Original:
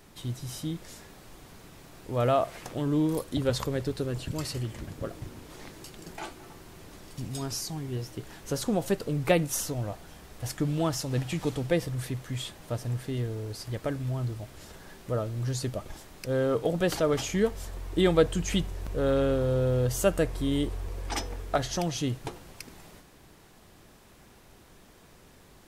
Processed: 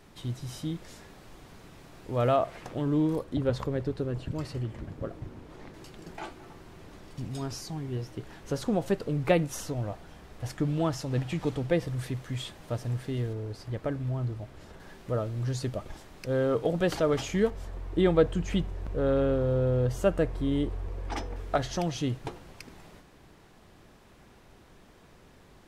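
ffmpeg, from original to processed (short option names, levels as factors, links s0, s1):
-af "asetnsamples=n=441:p=0,asendcmd='2.36 lowpass f 2700;3.16 lowpass f 1400;5.74 lowpass f 2900;11.87 lowpass f 5000;13.33 lowpass f 1900;14.8 lowpass f 4100;17.5 lowpass f 1700;21.36 lowpass f 3700',lowpass=f=4700:p=1"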